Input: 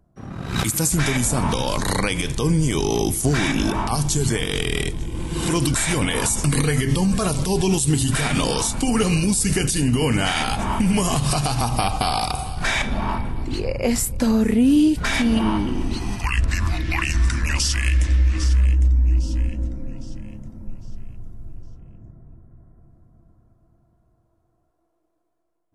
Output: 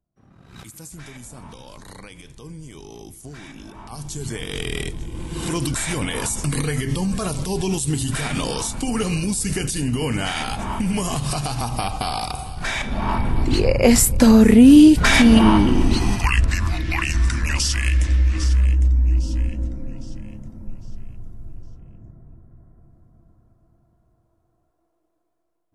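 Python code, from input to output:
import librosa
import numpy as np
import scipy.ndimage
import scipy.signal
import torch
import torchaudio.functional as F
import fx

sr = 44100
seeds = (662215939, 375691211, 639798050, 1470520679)

y = fx.gain(x, sr, db=fx.line((3.72, -19.0), (4.0, -12.0), (4.65, -3.5), (12.82, -3.5), (13.37, 7.0), (16.04, 7.0), (16.62, 0.0)))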